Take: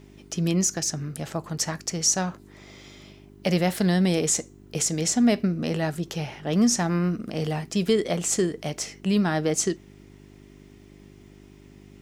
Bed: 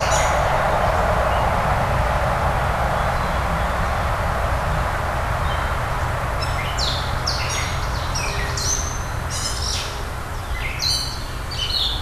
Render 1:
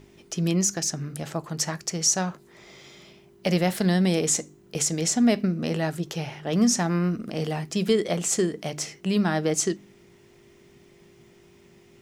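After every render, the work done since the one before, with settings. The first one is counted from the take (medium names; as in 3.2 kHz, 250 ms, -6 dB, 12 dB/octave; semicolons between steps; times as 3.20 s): de-hum 50 Hz, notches 6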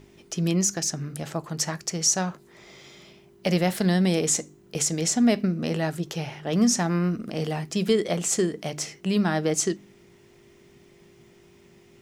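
no audible change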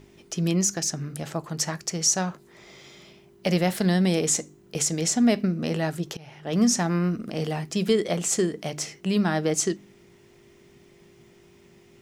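6.17–6.59 s: fade in, from -23.5 dB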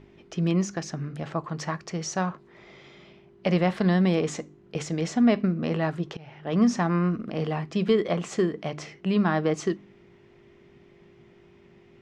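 low-pass 2.9 kHz 12 dB/octave; dynamic bell 1.1 kHz, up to +8 dB, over -54 dBFS, Q 5.2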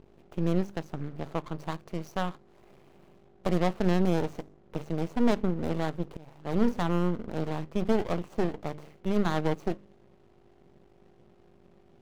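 median filter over 25 samples; half-wave rectifier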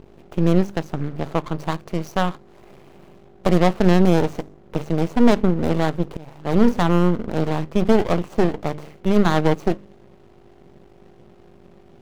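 trim +10 dB; peak limiter -3 dBFS, peak gain reduction 1.5 dB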